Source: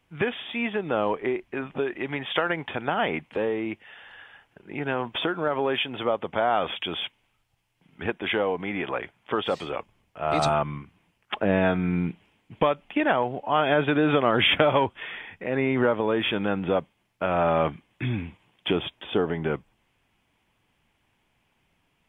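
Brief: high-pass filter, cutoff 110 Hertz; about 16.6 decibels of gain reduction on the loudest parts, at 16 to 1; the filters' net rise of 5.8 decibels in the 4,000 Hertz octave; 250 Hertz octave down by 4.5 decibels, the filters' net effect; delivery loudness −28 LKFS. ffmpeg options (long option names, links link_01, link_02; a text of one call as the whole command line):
ffmpeg -i in.wav -af "highpass=110,equalizer=frequency=250:width_type=o:gain=-6,equalizer=frequency=4000:width_type=o:gain=8,acompressor=threshold=-29dB:ratio=16,volume=6.5dB" out.wav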